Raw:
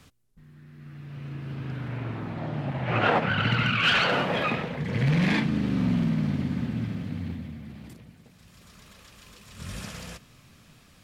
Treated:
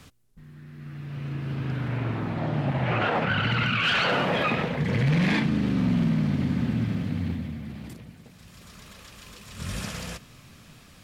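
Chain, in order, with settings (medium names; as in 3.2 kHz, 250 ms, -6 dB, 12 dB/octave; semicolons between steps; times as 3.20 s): peak limiter -21 dBFS, peak gain reduction 9 dB; trim +4.5 dB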